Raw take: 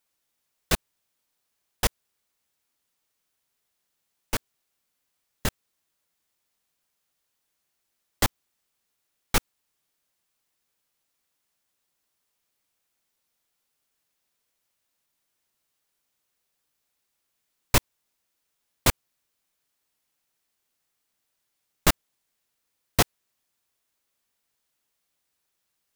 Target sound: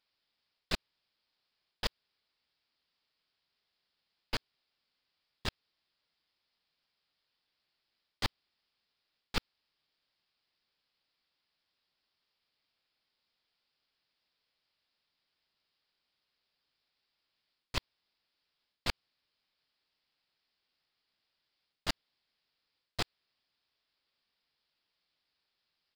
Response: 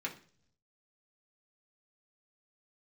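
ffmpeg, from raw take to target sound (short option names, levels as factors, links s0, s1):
-af "aemphasis=mode=production:type=75fm,areverse,acompressor=threshold=0.2:ratio=6,areverse,aresample=11025,aresample=44100,acrusher=bits=5:mode=log:mix=0:aa=0.000001,aeval=exprs='clip(val(0),-1,0.0224)':c=same,volume=0.708"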